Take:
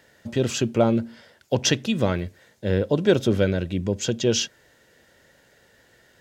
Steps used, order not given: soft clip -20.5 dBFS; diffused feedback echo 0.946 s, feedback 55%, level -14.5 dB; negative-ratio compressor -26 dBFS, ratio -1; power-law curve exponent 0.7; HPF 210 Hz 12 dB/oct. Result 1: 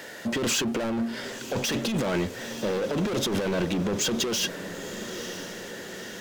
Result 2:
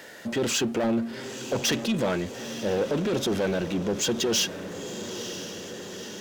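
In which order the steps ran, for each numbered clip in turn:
HPF > power-law curve > soft clip > diffused feedback echo > negative-ratio compressor; soft clip > HPF > negative-ratio compressor > diffused feedback echo > power-law curve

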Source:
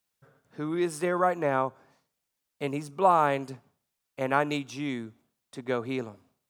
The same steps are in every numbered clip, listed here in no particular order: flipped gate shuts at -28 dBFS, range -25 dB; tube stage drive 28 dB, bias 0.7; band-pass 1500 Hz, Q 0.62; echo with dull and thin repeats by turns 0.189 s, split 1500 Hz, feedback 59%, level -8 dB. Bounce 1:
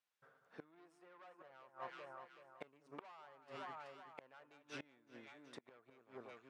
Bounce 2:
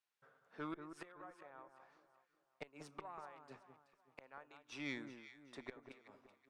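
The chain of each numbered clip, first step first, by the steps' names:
tube stage > echo with dull and thin repeats by turns > flipped gate > band-pass; band-pass > flipped gate > tube stage > echo with dull and thin repeats by turns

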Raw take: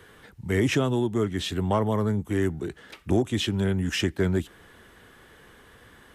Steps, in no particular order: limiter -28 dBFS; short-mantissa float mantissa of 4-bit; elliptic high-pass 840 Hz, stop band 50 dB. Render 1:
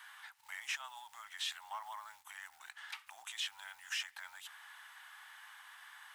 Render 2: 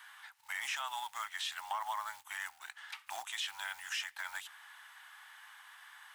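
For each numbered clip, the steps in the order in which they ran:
limiter > short-mantissa float > elliptic high-pass; short-mantissa float > elliptic high-pass > limiter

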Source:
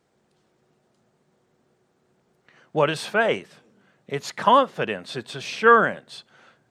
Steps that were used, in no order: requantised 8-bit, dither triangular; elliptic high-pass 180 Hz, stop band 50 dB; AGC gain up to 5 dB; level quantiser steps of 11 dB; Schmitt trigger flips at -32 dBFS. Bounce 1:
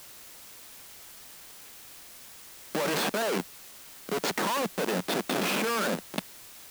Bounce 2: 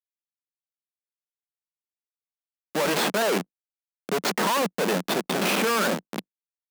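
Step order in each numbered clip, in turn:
Schmitt trigger > elliptic high-pass > level quantiser > AGC > requantised; requantised > Schmitt trigger > AGC > level quantiser > elliptic high-pass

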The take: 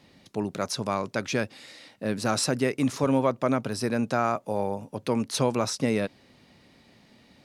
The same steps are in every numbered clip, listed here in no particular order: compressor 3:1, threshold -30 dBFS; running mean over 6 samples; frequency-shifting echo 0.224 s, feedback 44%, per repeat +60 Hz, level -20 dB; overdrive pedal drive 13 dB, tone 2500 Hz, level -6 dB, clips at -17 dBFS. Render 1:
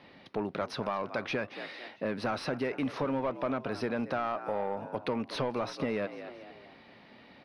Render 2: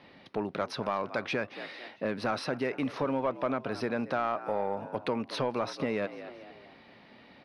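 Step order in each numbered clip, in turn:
frequency-shifting echo > overdrive pedal > compressor > running mean; frequency-shifting echo > compressor > running mean > overdrive pedal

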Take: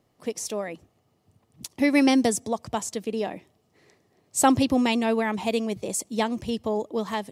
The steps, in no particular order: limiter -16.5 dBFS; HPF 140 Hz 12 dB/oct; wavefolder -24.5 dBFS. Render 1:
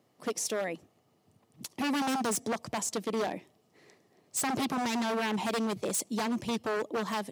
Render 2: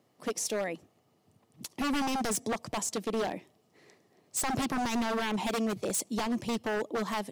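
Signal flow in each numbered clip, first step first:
limiter > wavefolder > HPF; HPF > limiter > wavefolder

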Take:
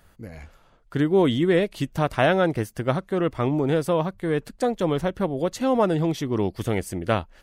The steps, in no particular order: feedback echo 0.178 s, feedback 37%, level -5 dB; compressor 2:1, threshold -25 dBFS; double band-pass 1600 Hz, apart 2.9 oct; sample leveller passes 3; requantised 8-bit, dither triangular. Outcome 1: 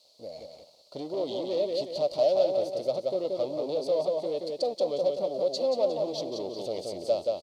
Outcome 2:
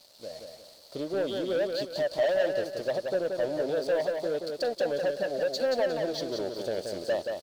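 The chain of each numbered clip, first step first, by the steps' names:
compressor > feedback echo > sample leveller > requantised > double band-pass; requantised > compressor > double band-pass > sample leveller > feedback echo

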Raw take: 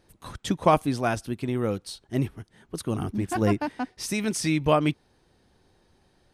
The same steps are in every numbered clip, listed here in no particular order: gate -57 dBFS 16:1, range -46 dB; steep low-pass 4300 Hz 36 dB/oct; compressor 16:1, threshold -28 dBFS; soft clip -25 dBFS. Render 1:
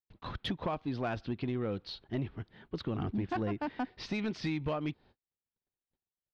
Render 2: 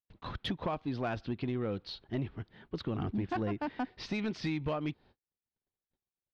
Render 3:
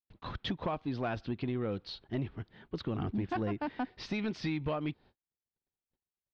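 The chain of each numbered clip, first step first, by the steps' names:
compressor > steep low-pass > gate > soft clip; compressor > gate > steep low-pass > soft clip; compressor > soft clip > steep low-pass > gate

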